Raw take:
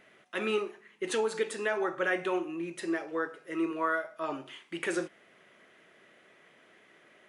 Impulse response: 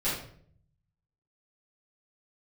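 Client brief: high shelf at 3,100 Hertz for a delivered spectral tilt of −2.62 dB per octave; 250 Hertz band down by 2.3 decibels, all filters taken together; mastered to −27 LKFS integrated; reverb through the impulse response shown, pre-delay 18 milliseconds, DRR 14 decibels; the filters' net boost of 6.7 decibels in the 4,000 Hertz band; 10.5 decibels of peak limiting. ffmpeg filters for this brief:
-filter_complex "[0:a]equalizer=frequency=250:width_type=o:gain=-4,highshelf=frequency=3100:gain=7,equalizer=frequency=4000:width_type=o:gain=4,alimiter=level_in=1.5dB:limit=-24dB:level=0:latency=1,volume=-1.5dB,asplit=2[link_01][link_02];[1:a]atrim=start_sample=2205,adelay=18[link_03];[link_02][link_03]afir=irnorm=-1:irlink=0,volume=-23dB[link_04];[link_01][link_04]amix=inputs=2:normalize=0,volume=9dB"

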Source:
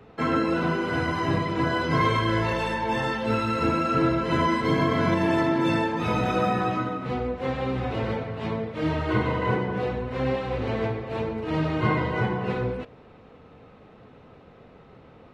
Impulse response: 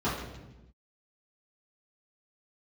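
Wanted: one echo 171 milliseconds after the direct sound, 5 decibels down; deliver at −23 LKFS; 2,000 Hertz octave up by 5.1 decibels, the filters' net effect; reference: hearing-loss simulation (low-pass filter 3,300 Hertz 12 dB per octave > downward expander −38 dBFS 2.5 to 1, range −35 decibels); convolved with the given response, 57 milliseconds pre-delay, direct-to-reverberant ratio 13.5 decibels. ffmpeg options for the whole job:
-filter_complex "[0:a]equalizer=frequency=2000:width_type=o:gain=7,aecho=1:1:171:0.562,asplit=2[link_01][link_02];[1:a]atrim=start_sample=2205,adelay=57[link_03];[link_02][link_03]afir=irnorm=-1:irlink=0,volume=-24.5dB[link_04];[link_01][link_04]amix=inputs=2:normalize=0,lowpass=3300,agate=range=-35dB:threshold=-38dB:ratio=2.5,volume=-0.5dB"

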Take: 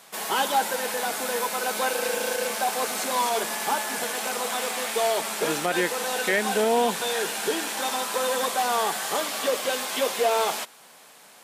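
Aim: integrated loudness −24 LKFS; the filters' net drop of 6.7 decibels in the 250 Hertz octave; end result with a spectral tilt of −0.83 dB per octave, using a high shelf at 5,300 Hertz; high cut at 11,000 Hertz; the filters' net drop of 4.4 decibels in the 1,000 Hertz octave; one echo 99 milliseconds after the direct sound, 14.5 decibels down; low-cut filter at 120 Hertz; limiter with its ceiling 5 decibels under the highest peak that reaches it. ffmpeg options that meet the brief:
ffmpeg -i in.wav -af "highpass=120,lowpass=11000,equalizer=frequency=250:width_type=o:gain=-8.5,equalizer=frequency=1000:width_type=o:gain=-5,highshelf=frequency=5300:gain=-8.5,alimiter=limit=-20dB:level=0:latency=1,aecho=1:1:99:0.188,volume=6dB" out.wav

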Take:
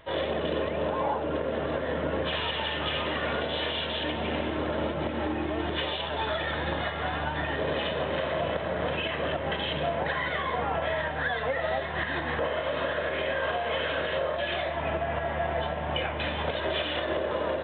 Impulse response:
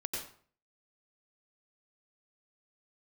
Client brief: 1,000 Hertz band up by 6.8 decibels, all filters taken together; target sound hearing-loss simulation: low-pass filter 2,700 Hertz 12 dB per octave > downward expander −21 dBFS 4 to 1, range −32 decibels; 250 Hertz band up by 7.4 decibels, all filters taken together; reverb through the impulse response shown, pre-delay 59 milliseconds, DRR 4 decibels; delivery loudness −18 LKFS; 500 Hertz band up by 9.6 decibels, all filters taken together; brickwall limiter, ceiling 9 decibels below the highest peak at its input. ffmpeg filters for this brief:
-filter_complex "[0:a]equalizer=frequency=250:width_type=o:gain=6,equalizer=frequency=500:width_type=o:gain=9,equalizer=frequency=1000:width_type=o:gain=5,alimiter=limit=-17.5dB:level=0:latency=1,asplit=2[link_01][link_02];[1:a]atrim=start_sample=2205,adelay=59[link_03];[link_02][link_03]afir=irnorm=-1:irlink=0,volume=-6dB[link_04];[link_01][link_04]amix=inputs=2:normalize=0,lowpass=2700,agate=range=-32dB:threshold=-21dB:ratio=4,volume=7.5dB"

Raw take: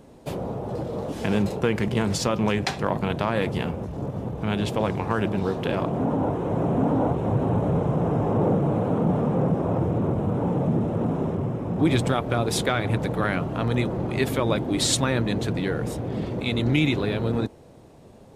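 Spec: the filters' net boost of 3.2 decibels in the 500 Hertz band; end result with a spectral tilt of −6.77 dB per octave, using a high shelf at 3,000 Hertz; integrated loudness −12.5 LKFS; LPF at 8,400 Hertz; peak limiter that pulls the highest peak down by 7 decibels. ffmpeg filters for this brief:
ffmpeg -i in.wav -af "lowpass=8400,equalizer=frequency=500:width_type=o:gain=4,highshelf=frequency=3000:gain=-5.5,volume=12.5dB,alimiter=limit=-1dB:level=0:latency=1" out.wav

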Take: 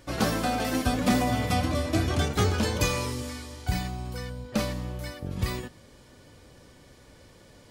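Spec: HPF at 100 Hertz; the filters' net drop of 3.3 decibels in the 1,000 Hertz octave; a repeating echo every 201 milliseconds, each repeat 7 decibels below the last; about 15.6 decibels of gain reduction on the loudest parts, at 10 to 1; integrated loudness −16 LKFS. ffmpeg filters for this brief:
ffmpeg -i in.wav -af "highpass=100,equalizer=frequency=1000:width_type=o:gain=-5,acompressor=threshold=-36dB:ratio=10,aecho=1:1:201|402|603|804|1005:0.447|0.201|0.0905|0.0407|0.0183,volume=23.5dB" out.wav

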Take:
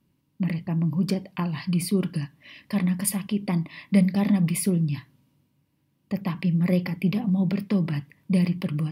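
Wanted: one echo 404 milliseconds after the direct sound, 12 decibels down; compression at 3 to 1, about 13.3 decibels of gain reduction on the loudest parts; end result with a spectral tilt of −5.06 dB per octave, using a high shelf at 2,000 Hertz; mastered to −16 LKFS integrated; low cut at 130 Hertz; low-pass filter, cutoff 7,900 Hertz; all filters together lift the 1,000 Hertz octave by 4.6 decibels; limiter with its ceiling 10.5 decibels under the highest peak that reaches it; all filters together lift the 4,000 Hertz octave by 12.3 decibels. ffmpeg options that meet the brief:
ffmpeg -i in.wav -af "highpass=130,lowpass=7900,equalizer=frequency=1000:width_type=o:gain=3.5,highshelf=frequency=2000:gain=7.5,equalizer=frequency=4000:width_type=o:gain=8.5,acompressor=threshold=-34dB:ratio=3,alimiter=level_in=4dB:limit=-24dB:level=0:latency=1,volume=-4dB,aecho=1:1:404:0.251,volume=21dB" out.wav

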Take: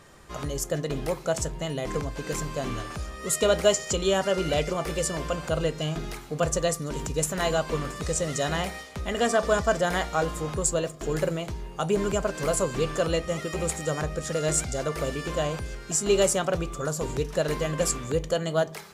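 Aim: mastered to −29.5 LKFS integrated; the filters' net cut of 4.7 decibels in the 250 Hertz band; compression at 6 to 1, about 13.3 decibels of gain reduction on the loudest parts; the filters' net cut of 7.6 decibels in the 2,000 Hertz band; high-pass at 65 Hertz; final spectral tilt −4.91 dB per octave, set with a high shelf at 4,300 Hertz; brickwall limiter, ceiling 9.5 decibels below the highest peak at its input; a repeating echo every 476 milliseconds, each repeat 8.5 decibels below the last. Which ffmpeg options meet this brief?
ffmpeg -i in.wav -af "highpass=65,equalizer=frequency=250:width_type=o:gain=-8,equalizer=frequency=2000:width_type=o:gain=-8.5,highshelf=frequency=4300:gain=-9,acompressor=threshold=-32dB:ratio=6,alimiter=level_in=5.5dB:limit=-24dB:level=0:latency=1,volume=-5.5dB,aecho=1:1:476|952|1428|1904:0.376|0.143|0.0543|0.0206,volume=9dB" out.wav

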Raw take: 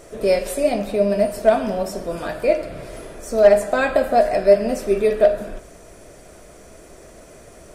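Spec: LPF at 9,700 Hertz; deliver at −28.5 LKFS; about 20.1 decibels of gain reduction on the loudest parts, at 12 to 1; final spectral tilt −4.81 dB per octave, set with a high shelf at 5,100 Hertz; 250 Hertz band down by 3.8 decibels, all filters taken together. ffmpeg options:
ffmpeg -i in.wav -af "lowpass=9700,equalizer=frequency=250:width_type=o:gain=-5,highshelf=frequency=5100:gain=-5,acompressor=threshold=-29dB:ratio=12,volume=5.5dB" out.wav

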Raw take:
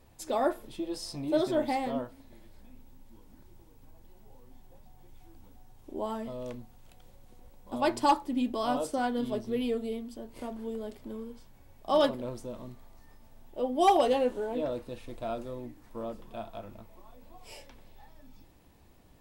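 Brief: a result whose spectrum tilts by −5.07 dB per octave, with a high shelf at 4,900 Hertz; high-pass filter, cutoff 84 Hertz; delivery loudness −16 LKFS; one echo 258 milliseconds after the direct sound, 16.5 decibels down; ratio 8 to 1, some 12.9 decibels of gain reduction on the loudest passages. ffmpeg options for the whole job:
ffmpeg -i in.wav -af "highpass=84,highshelf=frequency=4900:gain=-7,acompressor=threshold=-32dB:ratio=8,aecho=1:1:258:0.15,volume=22.5dB" out.wav

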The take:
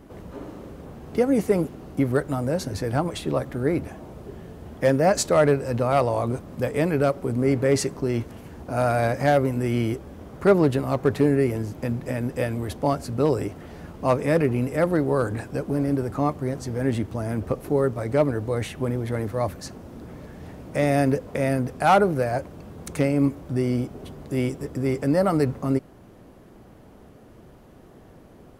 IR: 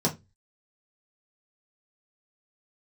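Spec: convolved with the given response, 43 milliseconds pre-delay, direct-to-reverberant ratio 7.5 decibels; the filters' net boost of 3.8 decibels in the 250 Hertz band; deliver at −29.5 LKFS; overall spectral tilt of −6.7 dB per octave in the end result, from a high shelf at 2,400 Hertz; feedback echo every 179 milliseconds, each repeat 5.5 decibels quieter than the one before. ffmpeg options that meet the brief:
-filter_complex "[0:a]equalizer=frequency=250:width_type=o:gain=4.5,highshelf=frequency=2400:gain=4.5,aecho=1:1:179|358|537|716|895|1074|1253:0.531|0.281|0.149|0.079|0.0419|0.0222|0.0118,asplit=2[link_01][link_02];[1:a]atrim=start_sample=2205,adelay=43[link_03];[link_02][link_03]afir=irnorm=-1:irlink=0,volume=-17.5dB[link_04];[link_01][link_04]amix=inputs=2:normalize=0,volume=-11.5dB"

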